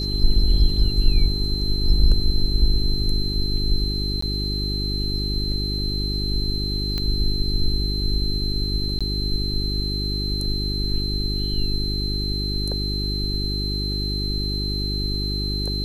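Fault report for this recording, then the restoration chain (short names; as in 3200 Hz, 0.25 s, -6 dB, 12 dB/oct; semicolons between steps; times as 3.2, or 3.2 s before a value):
hum 50 Hz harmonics 8 -26 dBFS
tone 4100 Hz -27 dBFS
4.21–4.22 gap 14 ms
6.98 pop -13 dBFS
8.99–9.01 gap 16 ms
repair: de-click; notch 4100 Hz, Q 30; de-hum 50 Hz, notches 8; interpolate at 4.21, 14 ms; interpolate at 8.99, 16 ms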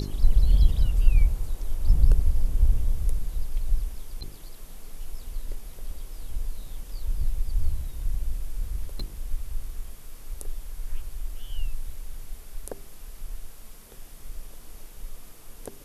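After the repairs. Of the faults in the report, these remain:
none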